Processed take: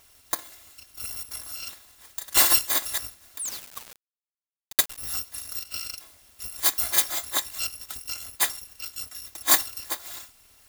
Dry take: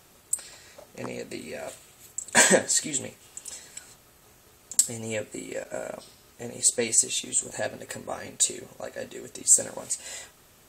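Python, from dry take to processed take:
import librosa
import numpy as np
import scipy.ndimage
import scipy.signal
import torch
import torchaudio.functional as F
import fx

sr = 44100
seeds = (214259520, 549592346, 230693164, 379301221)

y = fx.bit_reversed(x, sr, seeds[0], block=256)
y = fx.spec_paint(y, sr, seeds[1], shape='fall', start_s=3.39, length_s=0.65, low_hz=240.0, high_hz=11000.0, level_db=-31.0)
y = fx.sample_gate(y, sr, floor_db=-27.0, at=(3.49, 4.98))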